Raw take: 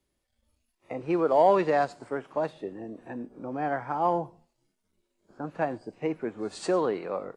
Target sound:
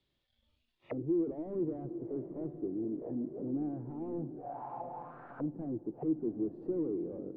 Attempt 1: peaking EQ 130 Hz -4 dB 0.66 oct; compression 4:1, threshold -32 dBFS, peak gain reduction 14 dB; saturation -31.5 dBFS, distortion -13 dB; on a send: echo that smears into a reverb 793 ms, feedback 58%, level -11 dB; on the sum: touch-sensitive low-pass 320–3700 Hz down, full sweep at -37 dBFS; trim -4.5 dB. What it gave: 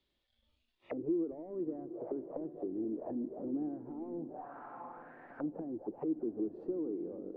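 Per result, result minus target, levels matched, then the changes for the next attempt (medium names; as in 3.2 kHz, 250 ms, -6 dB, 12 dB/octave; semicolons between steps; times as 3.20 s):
compression: peak gain reduction +14 dB; 125 Hz band -7.5 dB
remove: compression 4:1, threshold -32 dBFS, peak gain reduction 14 dB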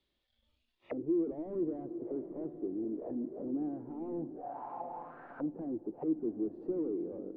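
125 Hz band -7.0 dB
change: peaking EQ 130 Hz +7.5 dB 0.66 oct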